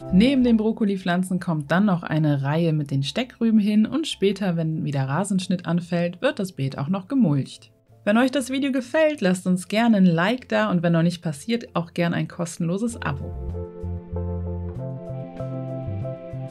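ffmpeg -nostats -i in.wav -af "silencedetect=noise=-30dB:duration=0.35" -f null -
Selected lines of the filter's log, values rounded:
silence_start: 7.62
silence_end: 8.07 | silence_duration: 0.44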